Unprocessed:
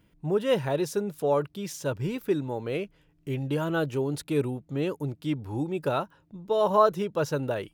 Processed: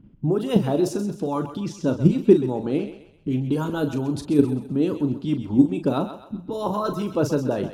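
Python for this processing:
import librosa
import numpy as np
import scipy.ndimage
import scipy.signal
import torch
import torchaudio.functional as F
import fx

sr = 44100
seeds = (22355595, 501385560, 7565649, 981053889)

p1 = fx.env_lowpass(x, sr, base_hz=2500.0, full_db=-22.5)
p2 = fx.low_shelf(p1, sr, hz=380.0, db=8.0)
p3 = fx.hpss(p2, sr, part='harmonic', gain_db=-16)
p4 = fx.graphic_eq(p3, sr, hz=(125, 250, 500, 2000), db=(5, 9, -4, -9))
p5 = fx.level_steps(p4, sr, step_db=19)
p6 = p4 + F.gain(torch.from_numpy(p5), 2.0).numpy()
p7 = fx.doubler(p6, sr, ms=39.0, db=-9.0)
p8 = p7 + fx.echo_thinned(p7, sr, ms=130, feedback_pct=43, hz=490.0, wet_db=-10.0, dry=0)
y = F.gain(torch.from_numpy(p8), 1.5).numpy()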